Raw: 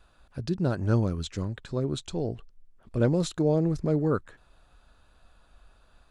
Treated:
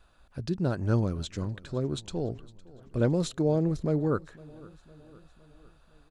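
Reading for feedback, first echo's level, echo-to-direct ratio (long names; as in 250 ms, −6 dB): 55%, −22.0 dB, −20.5 dB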